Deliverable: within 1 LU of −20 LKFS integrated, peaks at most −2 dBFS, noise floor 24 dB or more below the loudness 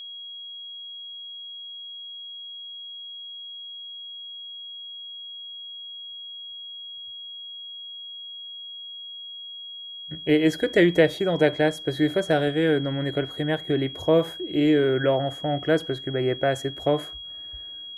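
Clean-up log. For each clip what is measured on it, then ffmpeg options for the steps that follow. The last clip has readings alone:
interfering tone 3,300 Hz; level of the tone −36 dBFS; integrated loudness −27.0 LKFS; sample peak −6.0 dBFS; target loudness −20.0 LKFS
→ -af "bandreject=frequency=3300:width=30"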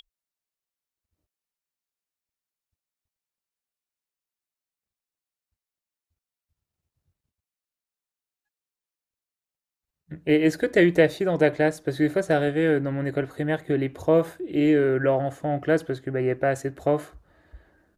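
interfering tone none found; integrated loudness −23.5 LKFS; sample peak −6.0 dBFS; target loudness −20.0 LKFS
→ -af "volume=3.5dB"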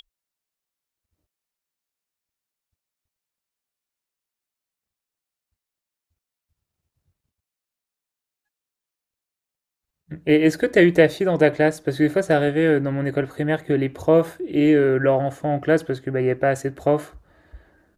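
integrated loudness −20.0 LKFS; sample peak −2.5 dBFS; background noise floor −88 dBFS

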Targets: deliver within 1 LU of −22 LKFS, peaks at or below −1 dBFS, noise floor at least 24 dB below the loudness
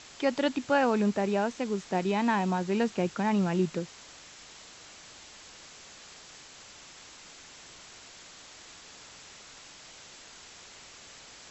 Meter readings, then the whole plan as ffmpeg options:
background noise floor −51 dBFS; target noise floor −53 dBFS; integrated loudness −28.5 LKFS; sample peak −14.5 dBFS; target loudness −22.0 LKFS
→ -af "afftdn=noise_reduction=6:noise_floor=-51"
-af "volume=6.5dB"

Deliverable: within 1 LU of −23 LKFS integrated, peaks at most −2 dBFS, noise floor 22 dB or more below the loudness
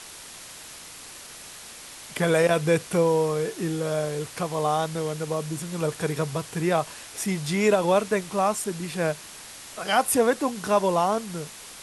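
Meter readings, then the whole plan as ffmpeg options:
background noise floor −43 dBFS; target noise floor −47 dBFS; integrated loudness −25.0 LKFS; sample peak −8.5 dBFS; target loudness −23.0 LKFS
→ -af "afftdn=noise_reduction=6:noise_floor=-43"
-af "volume=2dB"

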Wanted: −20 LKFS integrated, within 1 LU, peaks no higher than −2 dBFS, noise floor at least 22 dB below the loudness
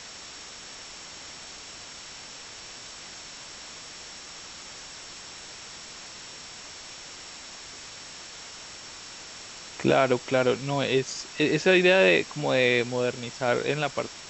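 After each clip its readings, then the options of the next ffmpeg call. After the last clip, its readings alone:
interfering tone 5,500 Hz; level of the tone −48 dBFS; background noise floor −43 dBFS; target noise floor −46 dBFS; integrated loudness −23.5 LKFS; sample peak −7.5 dBFS; target loudness −20.0 LKFS
→ -af "bandreject=frequency=5500:width=30"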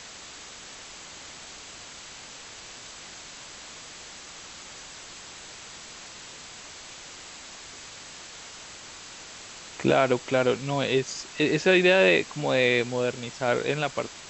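interfering tone none found; background noise floor −44 dBFS; target noise floor −46 dBFS
→ -af "afftdn=noise_reduction=6:noise_floor=-44"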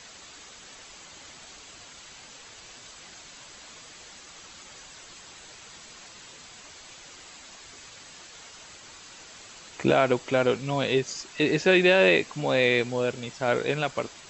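background noise floor −48 dBFS; integrated loudness −24.0 LKFS; sample peak −7.5 dBFS; target loudness −20.0 LKFS
→ -af "volume=4dB"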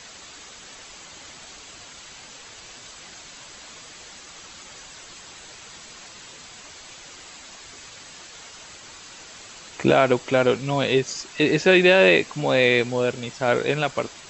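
integrated loudness −20.0 LKFS; sample peak −3.5 dBFS; background noise floor −44 dBFS

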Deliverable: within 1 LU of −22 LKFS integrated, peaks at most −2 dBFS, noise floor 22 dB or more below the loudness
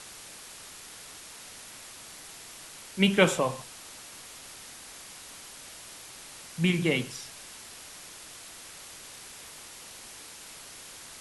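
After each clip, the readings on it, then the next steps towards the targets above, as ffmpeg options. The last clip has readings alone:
background noise floor −47 dBFS; target noise floor −56 dBFS; integrated loudness −34.0 LKFS; sample peak −5.5 dBFS; target loudness −22.0 LKFS
→ -af "afftdn=noise_reduction=9:noise_floor=-47"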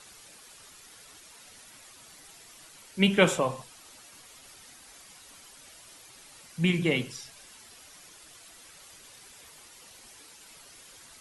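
background noise floor −52 dBFS; integrated loudness −26.5 LKFS; sample peak −5.5 dBFS; target loudness −22.0 LKFS
→ -af "volume=4.5dB,alimiter=limit=-2dB:level=0:latency=1"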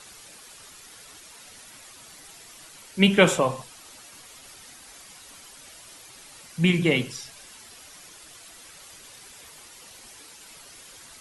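integrated loudness −22.5 LKFS; sample peak −2.0 dBFS; background noise floor −48 dBFS

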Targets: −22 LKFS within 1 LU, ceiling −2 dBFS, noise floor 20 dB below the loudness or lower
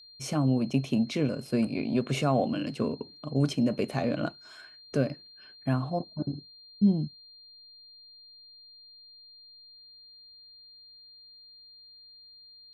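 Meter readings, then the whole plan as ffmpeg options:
interfering tone 4,200 Hz; level of the tone −50 dBFS; integrated loudness −29.5 LKFS; sample peak −12.5 dBFS; target loudness −22.0 LKFS
→ -af "bandreject=frequency=4200:width=30"
-af "volume=7.5dB"

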